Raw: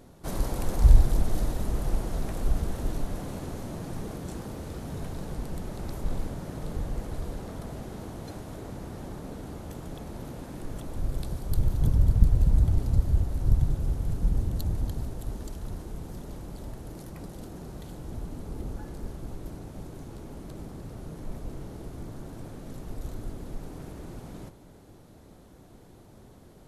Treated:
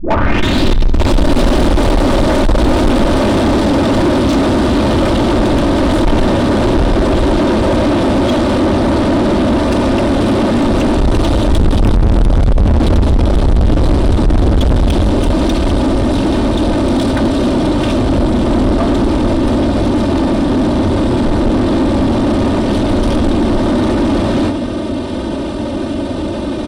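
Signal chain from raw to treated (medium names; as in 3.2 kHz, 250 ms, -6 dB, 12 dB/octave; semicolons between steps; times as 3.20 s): tape start-up on the opening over 1.23 s; peaking EQ 4.7 kHz +8.5 dB 0.53 oct; overload inside the chain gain 20.5 dB; feedback delay 78 ms, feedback 26%, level -19.5 dB; pitch shift -4 st; bass shelf 420 Hz +11.5 dB; band-stop 6.7 kHz, Q 9.1; comb 3.3 ms, depth 76%; overdrive pedal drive 43 dB, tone 1.5 kHz, clips at -3 dBFS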